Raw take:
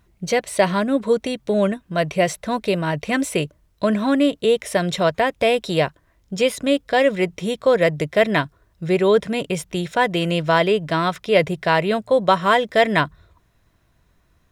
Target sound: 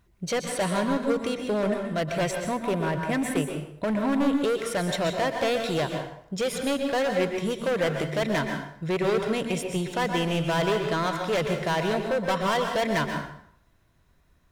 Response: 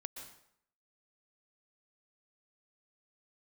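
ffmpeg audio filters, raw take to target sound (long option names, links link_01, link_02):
-filter_complex "[0:a]asettb=1/sr,asplit=3[link_01][link_02][link_03];[link_01]atrim=end=2.314[link_04];[link_02]atrim=start=2.31:end=4.31,asetpts=PTS-STARTPTS,afade=type=in:duration=0.004:curve=qsin,afade=type=out:start_time=1.996:duration=0.004:curve=qsin,equalizer=frequency=4700:width_type=o:width=0.85:gain=-14[link_05];[link_03]atrim=start=4.306[link_06];[link_04][link_05]acrossfade=duration=0.004:curve1=hsin:curve2=qsin[link_07];[link_07][link_06]acrossfade=duration=0.004:curve1=qsin:curve2=hsin,asoftclip=type=hard:threshold=-18dB[link_08];[1:a]atrim=start_sample=2205[link_09];[link_08][link_09]afir=irnorm=-1:irlink=0"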